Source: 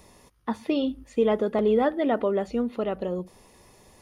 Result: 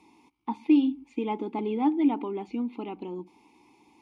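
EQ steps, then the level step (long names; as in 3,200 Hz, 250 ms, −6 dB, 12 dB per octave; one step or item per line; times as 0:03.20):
formant filter u
high-shelf EQ 2,400 Hz +10.5 dB
notch filter 1,900 Hz, Q 8
+8.0 dB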